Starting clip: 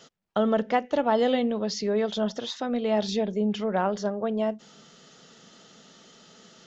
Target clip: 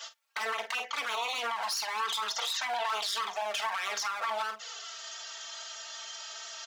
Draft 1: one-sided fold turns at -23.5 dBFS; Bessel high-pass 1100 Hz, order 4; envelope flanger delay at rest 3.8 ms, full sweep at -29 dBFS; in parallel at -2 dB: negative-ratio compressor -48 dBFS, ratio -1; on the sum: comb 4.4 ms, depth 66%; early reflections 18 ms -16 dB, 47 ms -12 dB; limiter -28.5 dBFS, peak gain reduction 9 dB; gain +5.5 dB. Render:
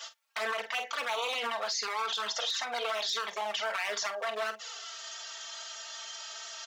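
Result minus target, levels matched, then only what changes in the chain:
one-sided fold: distortion -14 dB
change: one-sided fold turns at -32.5 dBFS

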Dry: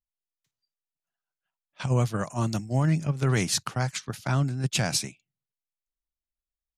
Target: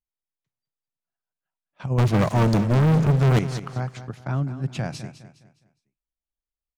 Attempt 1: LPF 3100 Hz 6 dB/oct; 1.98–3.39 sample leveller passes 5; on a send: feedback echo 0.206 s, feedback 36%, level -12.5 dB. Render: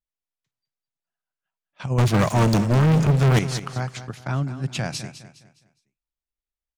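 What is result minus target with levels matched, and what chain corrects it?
4000 Hz band +4.5 dB
LPF 1000 Hz 6 dB/oct; 1.98–3.39 sample leveller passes 5; on a send: feedback echo 0.206 s, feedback 36%, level -12.5 dB

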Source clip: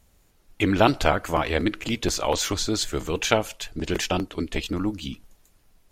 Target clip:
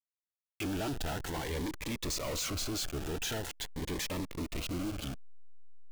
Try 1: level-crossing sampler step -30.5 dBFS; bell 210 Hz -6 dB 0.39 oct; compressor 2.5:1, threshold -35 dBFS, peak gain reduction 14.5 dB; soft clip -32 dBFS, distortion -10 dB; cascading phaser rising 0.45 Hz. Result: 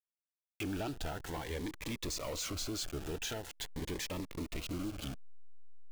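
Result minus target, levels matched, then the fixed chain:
compressor: peak gain reduction +14.5 dB
level-crossing sampler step -30.5 dBFS; bell 210 Hz -6 dB 0.39 oct; soft clip -32 dBFS, distortion -3 dB; cascading phaser rising 0.45 Hz

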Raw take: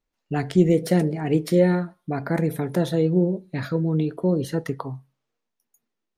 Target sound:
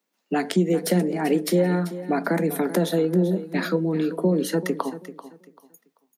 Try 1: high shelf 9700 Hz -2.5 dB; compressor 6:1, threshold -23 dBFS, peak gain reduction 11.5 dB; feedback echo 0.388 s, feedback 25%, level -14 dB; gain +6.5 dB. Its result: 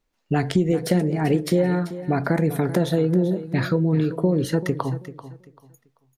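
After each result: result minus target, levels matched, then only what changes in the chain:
8000 Hz band -5.0 dB; 125 Hz band +4.0 dB
change: high shelf 9700 Hz +7 dB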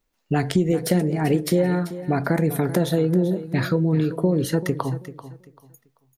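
125 Hz band +4.0 dB
add after compressor: steep high-pass 170 Hz 96 dB/oct

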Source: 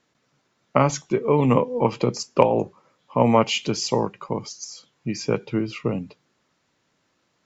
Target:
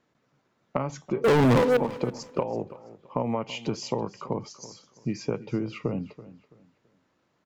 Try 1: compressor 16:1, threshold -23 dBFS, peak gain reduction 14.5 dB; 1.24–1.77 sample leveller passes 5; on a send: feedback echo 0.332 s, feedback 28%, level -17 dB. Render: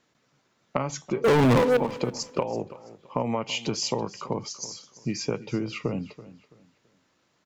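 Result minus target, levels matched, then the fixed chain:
4000 Hz band +5.5 dB
compressor 16:1, threshold -23 dBFS, peak gain reduction 14.5 dB; high shelf 2500 Hz -11 dB; 1.24–1.77 sample leveller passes 5; on a send: feedback echo 0.332 s, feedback 28%, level -17 dB

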